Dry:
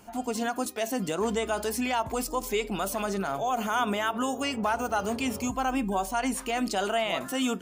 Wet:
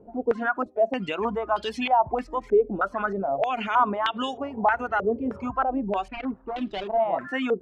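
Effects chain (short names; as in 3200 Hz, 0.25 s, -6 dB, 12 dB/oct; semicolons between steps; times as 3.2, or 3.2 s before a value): 6.08–7 median filter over 41 samples; reverb removal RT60 0.89 s; stepped low-pass 3.2 Hz 470–3300 Hz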